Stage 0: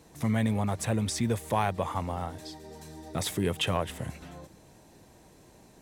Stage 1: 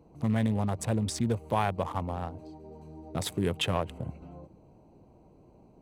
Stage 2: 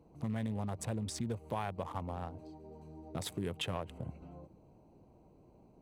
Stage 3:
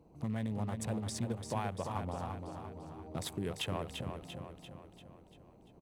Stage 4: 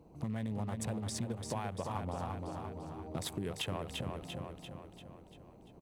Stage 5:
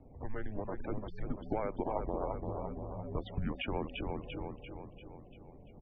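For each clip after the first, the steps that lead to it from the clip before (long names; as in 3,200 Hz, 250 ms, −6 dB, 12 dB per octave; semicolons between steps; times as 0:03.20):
adaptive Wiener filter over 25 samples
downward compressor 2 to 1, threshold −32 dBFS, peak gain reduction 6 dB; level −4.5 dB
repeating echo 343 ms, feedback 53%, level −6.5 dB
downward compressor 4 to 1, threshold −37 dBFS, peak gain reduction 6 dB; level +3 dB
spectral peaks only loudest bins 64; single-sideband voice off tune −210 Hz 170–2,800 Hz; pitch vibrato 9.6 Hz 49 cents; level +5 dB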